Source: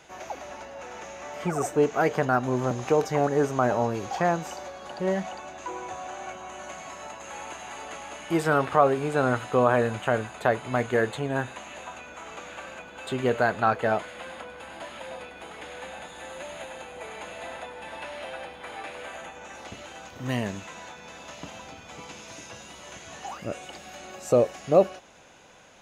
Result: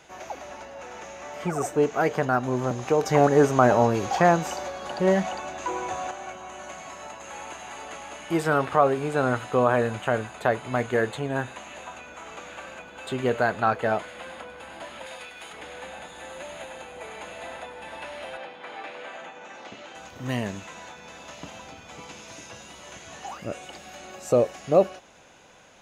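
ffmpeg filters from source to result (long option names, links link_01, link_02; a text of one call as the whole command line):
ffmpeg -i in.wav -filter_complex "[0:a]asettb=1/sr,asplit=3[link_01][link_02][link_03];[link_01]atrim=end=15.064[link_04];[link_02]atrim=start=15.06:end=15.53,asetpts=PTS-STARTPTS,afade=type=in:duration=0.004:curve=qsin,afade=type=out:start_time=0.466:duration=0.004:curve=qsin,tiltshelf=frequency=1200:gain=-7[link_05];[link_03]atrim=start=15.526[link_06];[link_04][link_05]acrossfade=duration=0.004:curve1=hsin:curve2=qsin[link_07];[link_07][link_06]acrossfade=duration=0.004:curve1=qsin:curve2=hsin,asettb=1/sr,asplit=3[link_08][link_09][link_10];[link_08]atrim=end=18.374[link_11];[link_09]atrim=start=18.37:end=19.95,asetpts=PTS-STARTPTS,afade=type=in:duration=0.004:curve=qsin,afade=type=out:start_time=1.576:duration=0.004:curve=qsin,highpass=180,lowpass=5100[link_12];[link_10]atrim=start=19.946[link_13];[link_11][link_12]acrossfade=duration=0.004:curve1=hsin:curve2=qsin[link_14];[link_14][link_13]acrossfade=duration=0.004:curve1=qsin:curve2=hsin,asplit=3[link_15][link_16][link_17];[link_15]atrim=end=3.062[link_18];[link_16]atrim=start=3.058:end=6.112,asetpts=PTS-STARTPTS,volume=5.5dB[link_19];[link_17]atrim=start=6.108[link_20];[link_18][link_19]acrossfade=duration=0.004:curve1=hsin:curve2=hsin[link_21];[link_21][link_20]acrossfade=duration=0.004:curve1=hsin:curve2=hsin" out.wav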